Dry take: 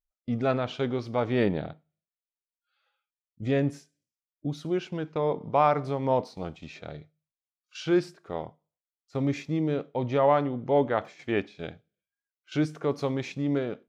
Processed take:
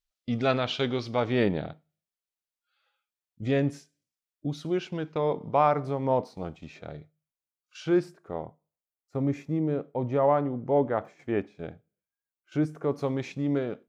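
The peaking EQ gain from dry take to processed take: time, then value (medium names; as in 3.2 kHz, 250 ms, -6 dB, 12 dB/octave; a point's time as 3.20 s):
peaking EQ 3.9 kHz 1.9 oct
0.94 s +9.5 dB
1.45 s +1.5 dB
5.38 s +1.5 dB
5.78 s -5.5 dB
7.85 s -5.5 dB
8.43 s -13 dB
12.76 s -13 dB
13.19 s -3.5 dB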